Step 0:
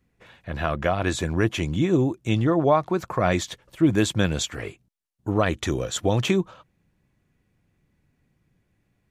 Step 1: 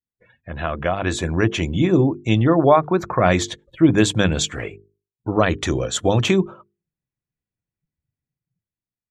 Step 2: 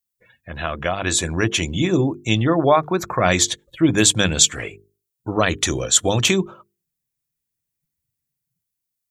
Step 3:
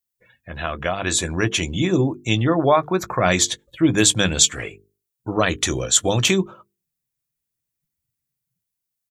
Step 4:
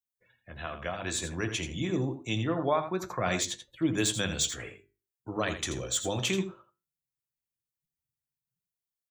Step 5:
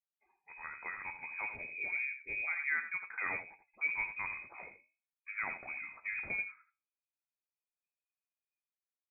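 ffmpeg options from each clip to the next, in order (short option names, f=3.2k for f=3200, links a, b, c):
-af "afftdn=nr=29:nf=-46,bandreject=f=50:t=h:w=6,bandreject=f=100:t=h:w=6,bandreject=f=150:t=h:w=6,bandreject=f=200:t=h:w=6,bandreject=f=250:t=h:w=6,bandreject=f=300:t=h:w=6,bandreject=f=350:t=h:w=6,bandreject=f=400:t=h:w=6,bandreject=f=450:t=h:w=6,dynaudnorm=f=460:g=5:m=7.5dB"
-af "crystalizer=i=4.5:c=0,volume=-2.5dB"
-filter_complex "[0:a]asplit=2[a][b];[b]adelay=16,volume=-14dB[c];[a][c]amix=inputs=2:normalize=0,volume=-1dB"
-filter_complex "[0:a]acrossover=split=150|870|3600[a][b][c][d];[d]asoftclip=type=tanh:threshold=-11.5dB[e];[a][b][c][e]amix=inputs=4:normalize=0,aecho=1:1:83:0.316,flanger=delay=6.4:depth=8.3:regen=-79:speed=0.26:shape=triangular,volume=-7dB"
-af "lowpass=f=2.2k:t=q:w=0.5098,lowpass=f=2.2k:t=q:w=0.6013,lowpass=f=2.2k:t=q:w=0.9,lowpass=f=2.2k:t=q:w=2.563,afreqshift=-2600,volume=-7.5dB"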